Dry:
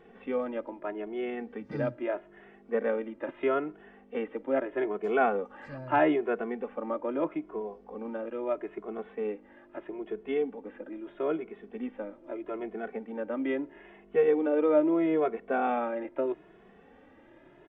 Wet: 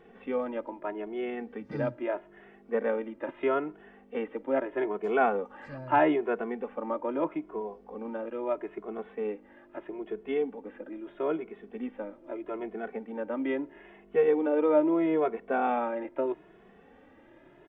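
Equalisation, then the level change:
dynamic equaliser 930 Hz, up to +6 dB, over −54 dBFS, Q 6.9
0.0 dB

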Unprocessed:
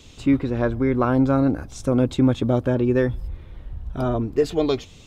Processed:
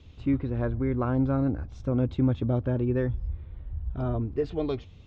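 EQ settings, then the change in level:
high-frequency loss of the air 210 metres
parametric band 73 Hz +10.5 dB 1.7 octaves
−8.5 dB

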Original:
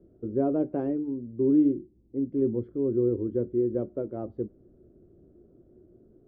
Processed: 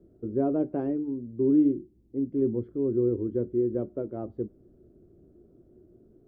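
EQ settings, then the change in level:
parametric band 530 Hz −3 dB 0.22 octaves
0.0 dB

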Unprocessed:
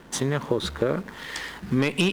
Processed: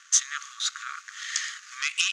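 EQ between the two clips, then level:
linear-phase brick-wall high-pass 1,100 Hz
low-pass with resonance 6,600 Hz, resonance Q 6.6
0.0 dB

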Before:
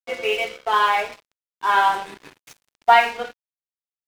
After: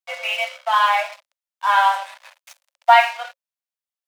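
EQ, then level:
Chebyshev high-pass filter 540 Hz, order 8
+2.0 dB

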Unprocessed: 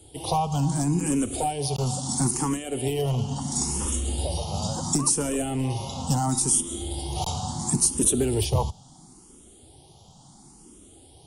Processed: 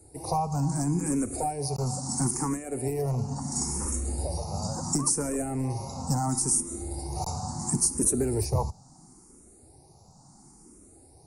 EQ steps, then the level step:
Butterworth band-reject 3,200 Hz, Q 1.3
−3.0 dB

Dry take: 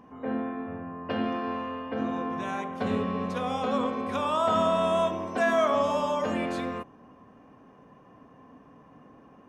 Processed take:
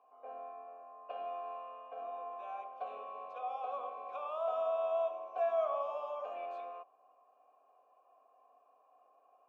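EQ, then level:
formant filter a
four-pole ladder high-pass 370 Hz, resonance 25%
+1.5 dB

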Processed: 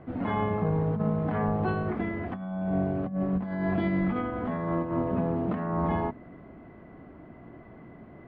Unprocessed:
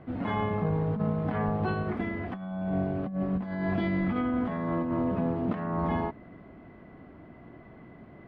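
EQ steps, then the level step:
high-shelf EQ 3,700 Hz −11 dB
mains-hum notches 50/100/150/200/250 Hz
+2.0 dB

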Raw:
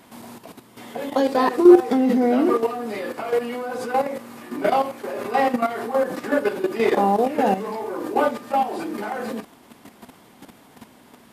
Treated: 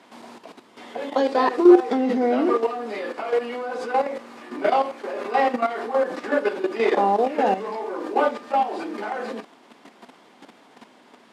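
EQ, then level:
band-pass filter 290–5,700 Hz
0.0 dB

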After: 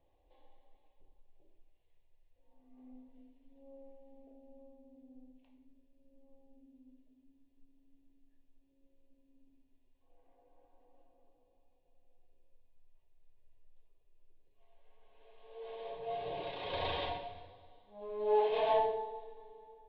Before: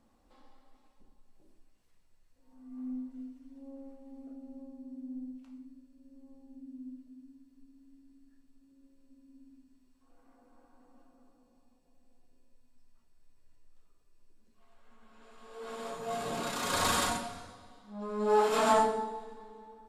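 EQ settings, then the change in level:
Butterworth low-pass 3,600 Hz 48 dB per octave
phaser with its sweep stopped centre 550 Hz, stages 4
−1.5 dB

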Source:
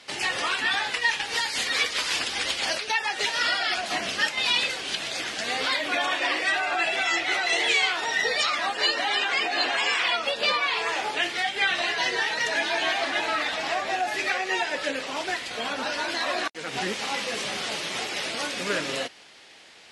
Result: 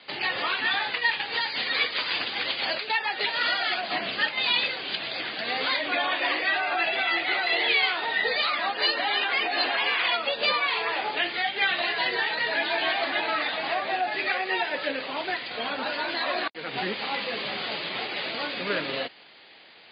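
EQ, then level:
high-pass filter 98 Hz 24 dB per octave
Chebyshev low-pass filter 4,800 Hz, order 10
0.0 dB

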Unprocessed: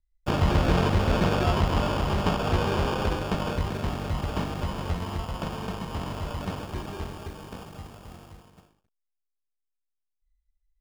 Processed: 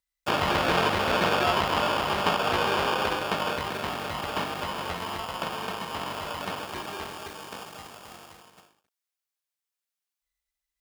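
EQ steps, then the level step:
high-pass filter 1,000 Hz 6 dB per octave
dynamic equaliser 6,500 Hz, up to −5 dB, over −52 dBFS, Q 1.2
+7.5 dB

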